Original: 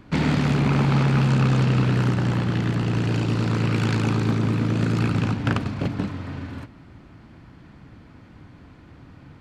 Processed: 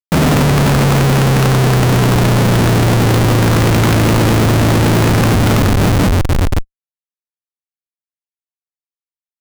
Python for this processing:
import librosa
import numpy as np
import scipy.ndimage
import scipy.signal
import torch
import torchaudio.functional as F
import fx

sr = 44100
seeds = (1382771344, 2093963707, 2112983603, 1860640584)

y = fx.schmitt(x, sr, flips_db=-27.5)
y = fx.leveller(y, sr, passes=3)
y = y * 10.0 ** (8.0 / 20.0)